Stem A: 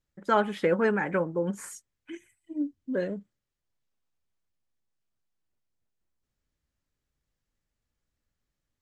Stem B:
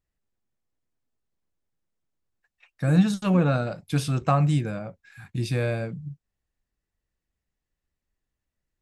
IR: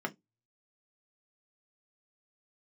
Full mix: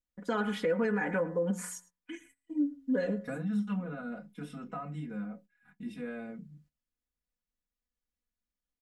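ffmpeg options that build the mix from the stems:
-filter_complex "[0:a]bandreject=f=90.37:t=h:w=4,bandreject=f=180.74:t=h:w=4,bandreject=f=271.11:t=h:w=4,bandreject=f=361.48:t=h:w=4,bandreject=f=451.85:t=h:w=4,bandreject=f=542.22:t=h:w=4,bandreject=f=632.59:t=h:w=4,bandreject=f=722.96:t=h:w=4,bandreject=f=813.33:t=h:w=4,bandreject=f=903.7:t=h:w=4,bandreject=f=994.07:t=h:w=4,bandreject=f=1.08444k:t=h:w=4,bandreject=f=1.17481k:t=h:w=4,bandreject=f=1.26518k:t=h:w=4,bandreject=f=1.35555k:t=h:w=4,bandreject=f=1.44592k:t=h:w=4,bandreject=f=1.53629k:t=h:w=4,bandreject=f=1.62666k:t=h:w=4,bandreject=f=1.71703k:t=h:w=4,bandreject=f=1.8074k:t=h:w=4,bandreject=f=1.89777k:t=h:w=4,bandreject=f=1.98814k:t=h:w=4,volume=-2dB,asplit=3[a][b][c];[b]volume=-21.5dB[d];[1:a]alimiter=limit=-16dB:level=0:latency=1:release=116,acompressor=threshold=-22dB:ratio=6,adelay=450,volume=-12.5dB,asplit=2[e][f];[f]volume=-6dB[g];[c]apad=whole_len=408420[h];[e][h]sidechaingate=range=-33dB:threshold=-57dB:ratio=16:detection=peak[i];[2:a]atrim=start_sample=2205[j];[g][j]afir=irnorm=-1:irlink=0[k];[d]aecho=0:1:107:1[l];[a][i][k][l]amix=inputs=4:normalize=0,agate=range=-12dB:threshold=-59dB:ratio=16:detection=peak,aecho=1:1:4.1:0.99,alimiter=limit=-21.5dB:level=0:latency=1:release=122"

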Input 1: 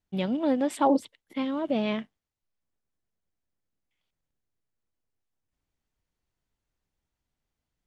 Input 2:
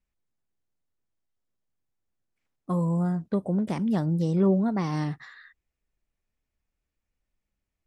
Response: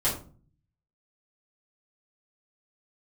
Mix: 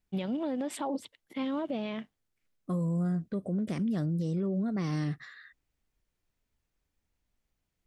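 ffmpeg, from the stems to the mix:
-filter_complex "[0:a]volume=-0.5dB[a];[1:a]equalizer=f=890:w=3.3:g=-14,volume=-1dB[b];[a][b]amix=inputs=2:normalize=0,alimiter=level_in=1dB:limit=-24dB:level=0:latency=1:release=99,volume=-1dB"

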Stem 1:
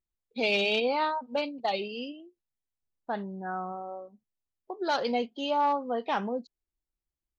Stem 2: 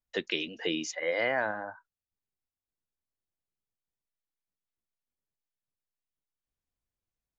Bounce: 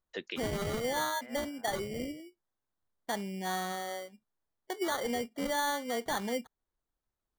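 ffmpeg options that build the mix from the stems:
-filter_complex "[0:a]acrusher=samples=17:mix=1:aa=0.000001,volume=0.5dB,asplit=2[a][b];[1:a]volume=-5.5dB[c];[b]apad=whole_len=325772[d];[c][d]sidechaincompress=threshold=-50dB:ratio=5:attack=16:release=361[e];[a][e]amix=inputs=2:normalize=0,alimiter=level_in=1dB:limit=-24dB:level=0:latency=1:release=225,volume=-1dB"

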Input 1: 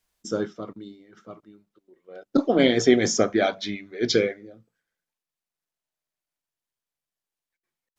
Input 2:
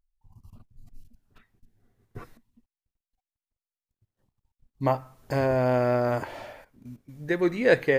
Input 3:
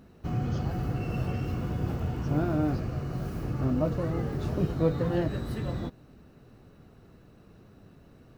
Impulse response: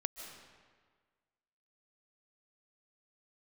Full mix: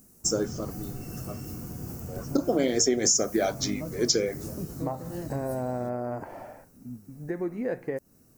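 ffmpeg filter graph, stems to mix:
-filter_complex "[0:a]equalizer=f=460:w=0.43:g=6.5,volume=-5.5dB[a];[1:a]lowpass=1.4k,equalizer=f=750:w=7.2:g=5.5,flanger=delay=5.5:depth=6:regen=88:speed=0.9:shape=sinusoidal,volume=2dB[b];[2:a]volume=-10dB[c];[b][c]amix=inputs=2:normalize=0,equalizer=f=230:w=1.2:g=5.5,acompressor=threshold=-30dB:ratio=3,volume=0dB[d];[a][d]amix=inputs=2:normalize=0,aexciter=amount=14.4:drive=4.9:freq=5.4k,acompressor=threshold=-21dB:ratio=4"

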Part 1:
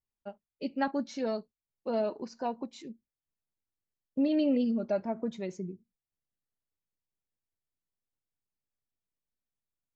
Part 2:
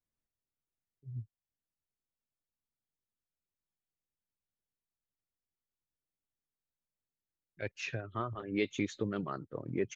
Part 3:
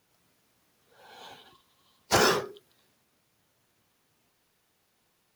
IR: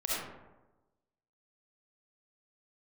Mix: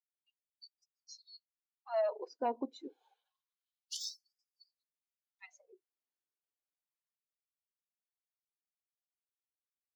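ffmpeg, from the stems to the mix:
-filter_complex "[0:a]agate=range=-11dB:threshold=-48dB:ratio=16:detection=peak,asoftclip=type=tanh:threshold=-23dB,volume=1dB,asplit=3[a][b][c];[a]atrim=end=4.84,asetpts=PTS-STARTPTS,afade=t=out:st=4.836:d=0.004:c=hsin[d];[b]atrim=start=4.84:end=5.39,asetpts=PTS-STARTPTS,volume=0[e];[c]atrim=start=5.39,asetpts=PTS-STARTPTS,afade=t=in:d=0.004:c=hsin[f];[d][e][f]concat=n=3:v=0:a=1[g];[2:a]aeval=exprs='0.376*(cos(1*acos(clip(val(0)/0.376,-1,1)))-cos(1*PI/2))+0.0596*(cos(4*acos(clip(val(0)/0.376,-1,1)))-cos(4*PI/2))':c=same,adelay=1800,volume=-11dB[h];[g][h]amix=inputs=2:normalize=0,afftdn=nr=21:nf=-44,afftfilt=real='re*gte(b*sr/1024,230*pow(4800/230,0.5+0.5*sin(2*PI*0.28*pts/sr)))':imag='im*gte(b*sr/1024,230*pow(4800/230,0.5+0.5*sin(2*PI*0.28*pts/sr)))':win_size=1024:overlap=0.75"

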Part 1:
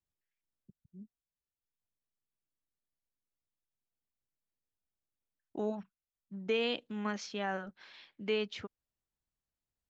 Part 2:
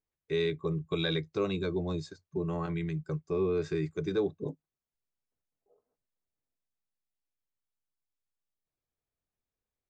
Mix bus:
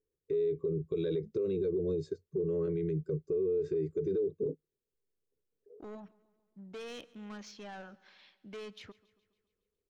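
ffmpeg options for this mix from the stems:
-filter_complex "[0:a]asoftclip=type=tanh:threshold=-35dB,adelay=250,volume=-5.5dB,asplit=2[a][b];[b]volume=-22dB[c];[1:a]firequalizer=gain_entry='entry(270,0);entry(430,15);entry(740,-20);entry(1200,-12)':delay=0.05:min_phase=1,acompressor=threshold=-21dB:ratio=6,volume=2.5dB[d];[c]aecho=0:1:139|278|417|556|695|834|973|1112|1251:1|0.57|0.325|0.185|0.106|0.0602|0.0343|0.0195|0.0111[e];[a][d][e]amix=inputs=3:normalize=0,alimiter=level_in=1.5dB:limit=-24dB:level=0:latency=1:release=50,volume=-1.5dB"

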